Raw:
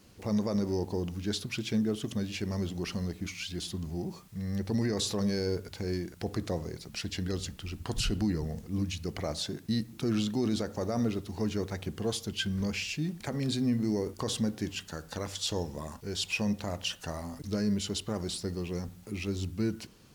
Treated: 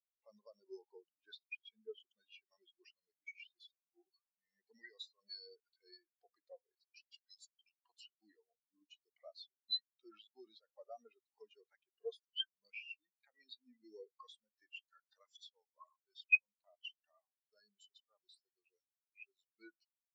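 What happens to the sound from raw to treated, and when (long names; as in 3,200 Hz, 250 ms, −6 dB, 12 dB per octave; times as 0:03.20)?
0:07.14–0:07.69: RIAA equalisation recording
0:16.02–0:19.56: clip gain −4 dB
whole clip: Bessel high-pass filter 1,500 Hz, order 2; downward compressor 4 to 1, threshold −44 dBFS; every bin expanded away from the loudest bin 4 to 1; level +7.5 dB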